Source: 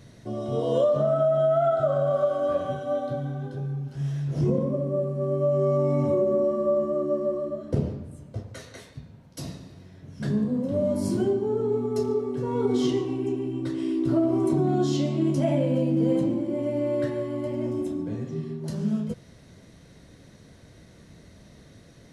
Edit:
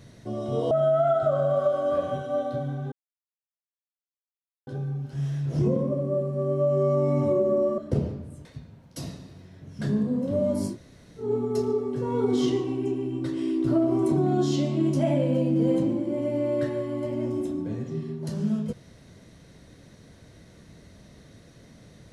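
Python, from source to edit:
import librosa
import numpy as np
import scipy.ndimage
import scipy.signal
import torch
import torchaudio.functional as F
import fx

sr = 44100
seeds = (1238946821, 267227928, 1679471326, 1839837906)

y = fx.edit(x, sr, fx.cut(start_s=0.71, length_s=0.57),
    fx.insert_silence(at_s=3.49, length_s=1.75),
    fx.cut(start_s=6.6, length_s=0.99),
    fx.cut(start_s=8.26, length_s=0.6),
    fx.room_tone_fill(start_s=11.11, length_s=0.54, crossfade_s=0.16), tone=tone)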